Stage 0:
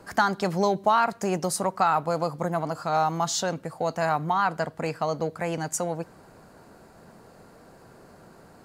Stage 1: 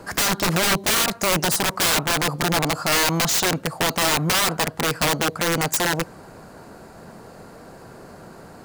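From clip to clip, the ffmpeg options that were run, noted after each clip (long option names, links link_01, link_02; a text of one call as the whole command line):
ffmpeg -i in.wav -af "aeval=exprs='(mod(13.3*val(0)+1,2)-1)/13.3':channel_layout=same,volume=8.5dB" out.wav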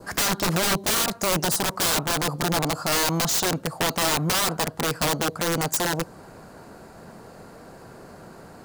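ffmpeg -i in.wav -af "adynamicequalizer=threshold=0.0158:dfrequency=2200:dqfactor=1.2:tfrequency=2200:tqfactor=1.2:attack=5:release=100:ratio=0.375:range=2.5:mode=cutabove:tftype=bell,volume=-2dB" out.wav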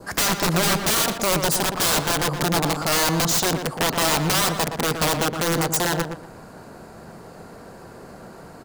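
ffmpeg -i in.wav -filter_complex "[0:a]asplit=2[link_01][link_02];[link_02]adelay=118,lowpass=frequency=2300:poles=1,volume=-6.5dB,asplit=2[link_03][link_04];[link_04]adelay=118,lowpass=frequency=2300:poles=1,volume=0.26,asplit=2[link_05][link_06];[link_06]adelay=118,lowpass=frequency=2300:poles=1,volume=0.26[link_07];[link_01][link_03][link_05][link_07]amix=inputs=4:normalize=0,volume=2dB" out.wav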